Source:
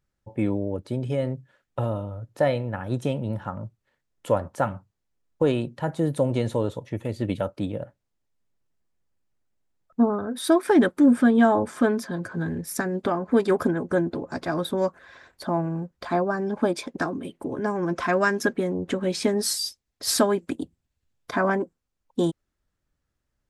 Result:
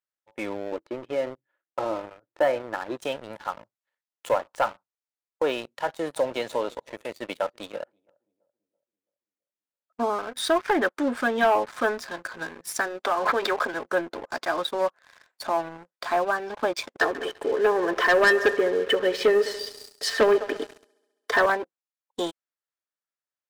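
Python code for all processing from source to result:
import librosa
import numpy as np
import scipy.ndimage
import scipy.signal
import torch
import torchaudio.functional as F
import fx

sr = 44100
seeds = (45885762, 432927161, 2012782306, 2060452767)

y = fx.chain(x, sr, fx.lowpass(hz=2300.0, slope=12),
    fx.peak_eq(hz=330.0, db=14.0, octaves=0.28), at=(0.72, 2.97))
y = fx.chain(y, sr, fx.highpass(hz=84.0, slope=24),
    fx.echo_filtered(ms=333, feedback_pct=47, hz=1000.0, wet_db=-17), at=(5.69, 10.26))
y = fx.chain(y, sr, fx.highpass(hz=170.0, slope=24),
    fx.low_shelf(hz=260.0, db=-12.0),
    fx.pre_swell(db_per_s=37.0), at=(13.05, 13.74))
y = fx.chain(y, sr, fx.small_body(hz=(440.0, 1800.0, 3000.0), ring_ms=45, db=17),
    fx.echo_heads(ms=68, heads='all three', feedback_pct=48, wet_db=-21), at=(17.01, 21.46))
y = scipy.signal.sosfilt(scipy.signal.butter(2, 670.0, 'highpass', fs=sr, output='sos'), y)
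y = fx.env_lowpass_down(y, sr, base_hz=2200.0, full_db=-22.5)
y = fx.leveller(y, sr, passes=3)
y = y * librosa.db_to_amplitude(-6.0)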